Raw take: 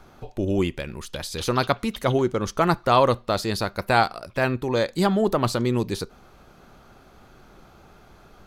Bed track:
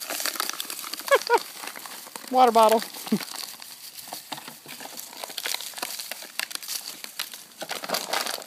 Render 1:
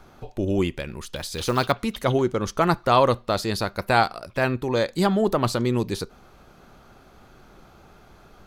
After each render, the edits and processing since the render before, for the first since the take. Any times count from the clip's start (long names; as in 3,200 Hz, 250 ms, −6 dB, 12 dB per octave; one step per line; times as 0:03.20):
0:01.16–0:01.72: log-companded quantiser 6 bits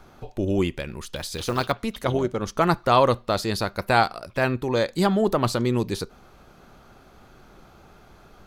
0:01.37–0:02.58: amplitude modulation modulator 220 Hz, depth 35%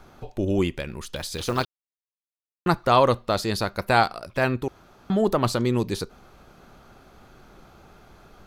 0:01.65–0:02.66: silence
0:04.68–0:05.10: fill with room tone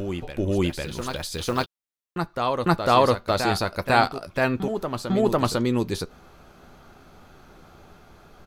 double-tracking delay 12 ms −11.5 dB
backwards echo 500 ms −7 dB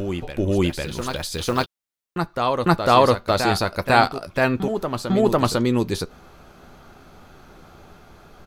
level +3 dB